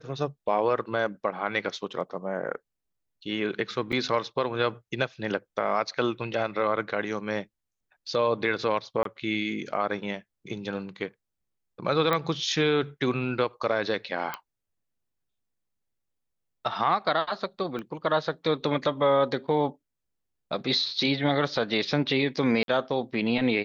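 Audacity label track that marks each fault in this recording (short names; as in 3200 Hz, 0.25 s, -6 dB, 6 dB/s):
3.920000	3.930000	gap 7 ms
9.030000	9.050000	gap 23 ms
12.130000	12.130000	pop -12 dBFS
14.340000	14.340000	pop -16 dBFS
17.790000	17.790000	pop -23 dBFS
22.630000	22.680000	gap 52 ms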